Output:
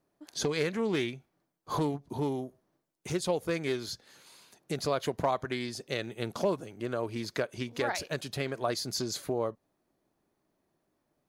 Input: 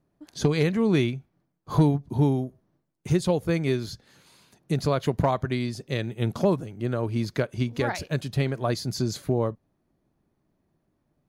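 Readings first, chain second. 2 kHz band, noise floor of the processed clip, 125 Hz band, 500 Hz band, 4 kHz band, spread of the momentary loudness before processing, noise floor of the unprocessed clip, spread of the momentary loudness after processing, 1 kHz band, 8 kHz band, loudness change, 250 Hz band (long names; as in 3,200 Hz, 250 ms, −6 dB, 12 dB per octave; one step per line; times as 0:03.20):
−2.5 dB, −79 dBFS, −13.5 dB, −4.5 dB, −0.5 dB, 8 LU, −74 dBFS, 7 LU, −3.5 dB, +1.0 dB, −7.0 dB, −9.0 dB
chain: downward compressor 1.5 to 1, threshold −28 dBFS, peak gain reduction 5 dB
bass and treble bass −12 dB, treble +3 dB
highs frequency-modulated by the lows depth 0.17 ms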